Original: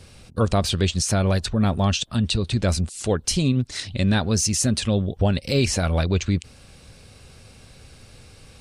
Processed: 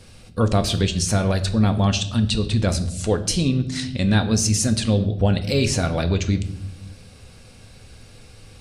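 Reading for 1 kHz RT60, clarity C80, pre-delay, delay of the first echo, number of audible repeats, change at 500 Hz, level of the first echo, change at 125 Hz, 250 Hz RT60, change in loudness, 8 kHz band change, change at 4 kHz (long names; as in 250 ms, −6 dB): 0.60 s, 15.5 dB, 4 ms, no echo audible, no echo audible, +1.0 dB, no echo audible, +2.0 dB, 1.3 s, +1.5 dB, +0.5 dB, +0.5 dB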